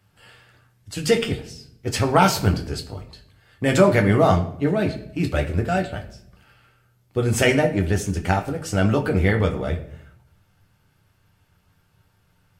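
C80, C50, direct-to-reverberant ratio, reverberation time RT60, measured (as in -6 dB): 15.5 dB, 12.0 dB, 3.0 dB, 0.70 s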